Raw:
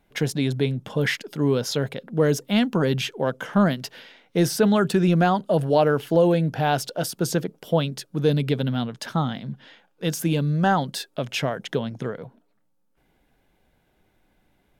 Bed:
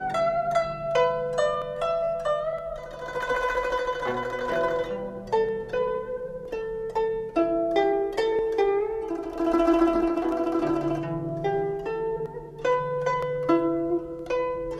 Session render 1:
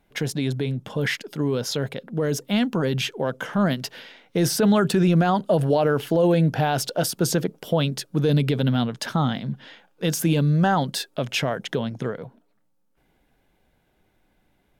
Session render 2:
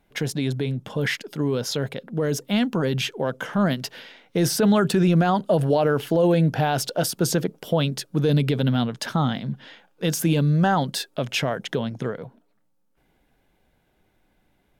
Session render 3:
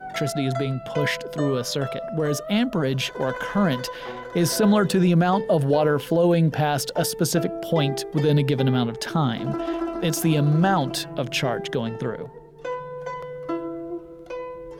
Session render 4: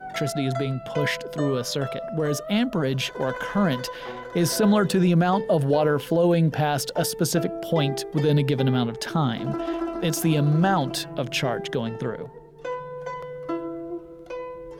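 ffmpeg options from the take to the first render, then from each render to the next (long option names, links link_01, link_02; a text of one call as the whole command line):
ffmpeg -i in.wav -af "alimiter=limit=-14.5dB:level=0:latency=1:release=38,dynaudnorm=framelen=430:gausssize=17:maxgain=4dB" out.wav
ffmpeg -i in.wav -af anull out.wav
ffmpeg -i in.wav -i bed.wav -filter_complex "[1:a]volume=-6.5dB[link_01];[0:a][link_01]amix=inputs=2:normalize=0" out.wav
ffmpeg -i in.wav -af "volume=-1dB" out.wav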